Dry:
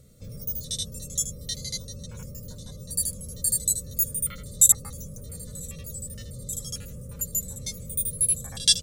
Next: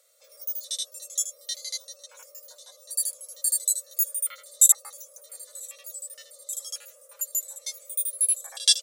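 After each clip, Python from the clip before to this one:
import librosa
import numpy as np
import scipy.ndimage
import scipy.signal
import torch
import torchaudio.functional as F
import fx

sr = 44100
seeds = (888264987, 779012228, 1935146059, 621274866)

y = scipy.signal.sosfilt(scipy.signal.butter(8, 560.0, 'highpass', fs=sr, output='sos'), x)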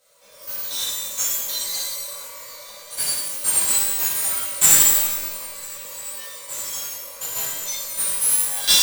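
y = fx.halfwave_hold(x, sr)
y = fx.rev_shimmer(y, sr, seeds[0], rt60_s=1.2, semitones=12, shimmer_db=-2, drr_db=-10.5)
y = F.gain(torch.from_numpy(y), -7.5).numpy()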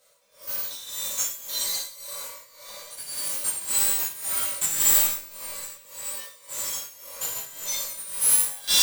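y = x * (1.0 - 0.84 / 2.0 + 0.84 / 2.0 * np.cos(2.0 * np.pi * 1.8 * (np.arange(len(x)) / sr)))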